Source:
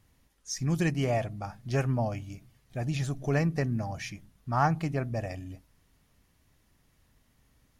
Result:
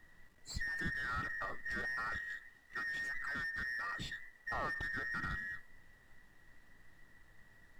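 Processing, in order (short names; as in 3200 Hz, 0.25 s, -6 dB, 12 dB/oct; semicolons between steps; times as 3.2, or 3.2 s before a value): band inversion scrambler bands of 2000 Hz; limiter -24 dBFS, peak gain reduction 10.5 dB; soft clip -33.5 dBFS, distortion -11 dB; 2.19–4.51 low shelf 340 Hz -11.5 dB; companded quantiser 6-bit; compressor, threshold -37 dBFS, peak gain reduction 3 dB; tilt -3.5 dB/oct; gain +2 dB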